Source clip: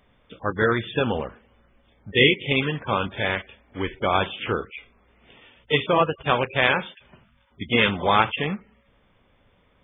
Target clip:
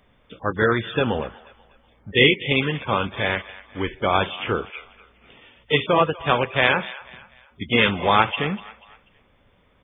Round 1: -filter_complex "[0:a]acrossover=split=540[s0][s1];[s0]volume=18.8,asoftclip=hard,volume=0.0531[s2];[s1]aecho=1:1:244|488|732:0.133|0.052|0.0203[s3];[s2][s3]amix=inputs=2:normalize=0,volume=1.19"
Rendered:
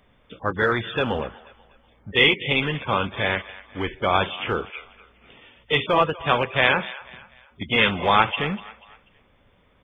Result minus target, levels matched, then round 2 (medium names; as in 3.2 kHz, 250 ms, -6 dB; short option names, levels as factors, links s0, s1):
overload inside the chain: distortion +23 dB
-filter_complex "[0:a]acrossover=split=540[s0][s1];[s0]volume=5.01,asoftclip=hard,volume=0.2[s2];[s1]aecho=1:1:244|488|732:0.133|0.052|0.0203[s3];[s2][s3]amix=inputs=2:normalize=0,volume=1.19"